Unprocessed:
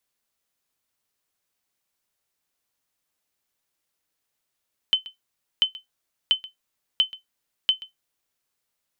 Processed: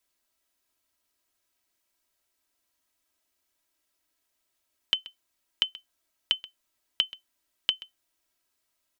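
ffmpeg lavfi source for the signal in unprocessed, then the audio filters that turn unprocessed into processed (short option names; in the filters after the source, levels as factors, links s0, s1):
-f lavfi -i "aevalsrc='0.316*(sin(2*PI*3060*mod(t,0.69))*exp(-6.91*mod(t,0.69)/0.14)+0.106*sin(2*PI*3060*max(mod(t,0.69)-0.13,0))*exp(-6.91*max(mod(t,0.69)-0.13,0)/0.14))':d=3.45:s=44100"
-af "aecho=1:1:3.1:0.7"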